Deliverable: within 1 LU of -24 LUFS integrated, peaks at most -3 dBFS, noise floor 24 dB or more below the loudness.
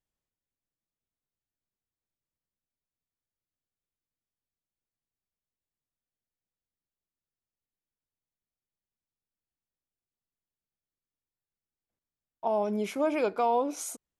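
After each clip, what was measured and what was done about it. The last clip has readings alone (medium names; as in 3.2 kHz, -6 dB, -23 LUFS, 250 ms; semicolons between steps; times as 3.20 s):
loudness -29.5 LUFS; peak level -16.5 dBFS; loudness target -24.0 LUFS
-> trim +5.5 dB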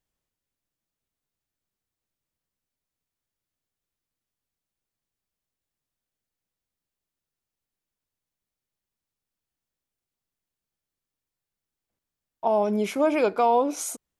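loudness -24.0 LUFS; peak level -11.0 dBFS; noise floor -89 dBFS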